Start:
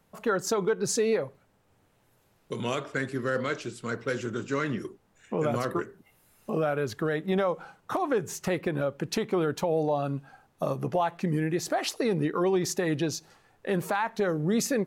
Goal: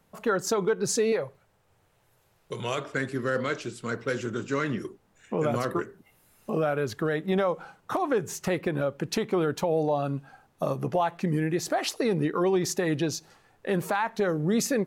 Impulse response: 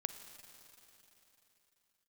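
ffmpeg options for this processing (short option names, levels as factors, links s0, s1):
-filter_complex "[0:a]asettb=1/sr,asplit=3[s0][s1][s2];[s0]atrim=end=1.124[s3];[s1]atrim=start=1.12:end=2.78,asetpts=PTS-STARTPTS,afade=t=in:d=0.004:c=qsin,afade=t=out:st=1.656:d=0.004:c=qsin,equalizer=f=250:t=o:w=0.63:g=-11[s4];[s2]atrim=start=2.776[s5];[s3][s4]acrossfade=d=0.004:c1=hsin:c2=qsin[s6];[s6][s5]acrossfade=d=0.004:c1=qsin:c2=hsin,volume=1.12"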